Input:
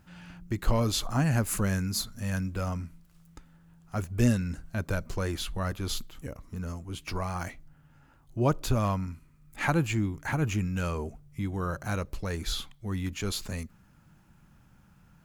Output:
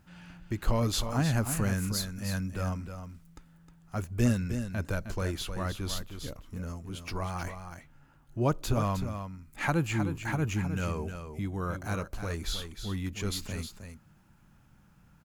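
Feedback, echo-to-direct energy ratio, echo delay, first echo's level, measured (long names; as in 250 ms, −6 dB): repeats not evenly spaced, −8.5 dB, 311 ms, −8.5 dB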